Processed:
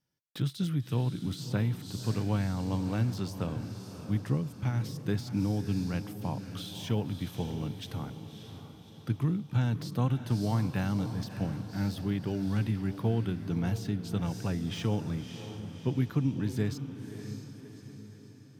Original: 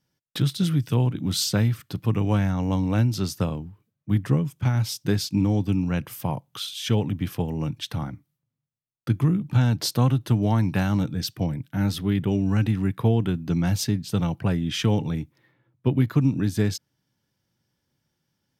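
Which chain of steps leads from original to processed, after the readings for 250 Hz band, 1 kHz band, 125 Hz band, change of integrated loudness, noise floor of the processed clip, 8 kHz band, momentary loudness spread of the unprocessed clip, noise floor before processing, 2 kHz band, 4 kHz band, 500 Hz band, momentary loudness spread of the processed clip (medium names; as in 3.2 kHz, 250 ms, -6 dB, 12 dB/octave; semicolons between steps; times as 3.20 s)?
-7.5 dB, -7.5 dB, -7.5 dB, -8.0 dB, -51 dBFS, -13.5 dB, 9 LU, -80 dBFS, -8.0 dB, -11.5 dB, -7.5 dB, 12 LU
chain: echo that smears into a reverb 600 ms, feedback 51%, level -10 dB; de-esser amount 75%; trim -8 dB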